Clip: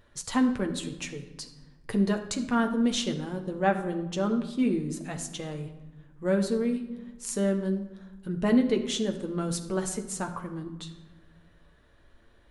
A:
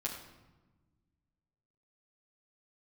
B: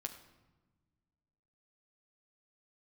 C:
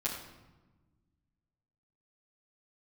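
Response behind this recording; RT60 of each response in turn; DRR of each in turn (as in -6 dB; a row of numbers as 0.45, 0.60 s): B; 1.2, 1.2, 1.2 s; -5.0, 3.5, -9.5 dB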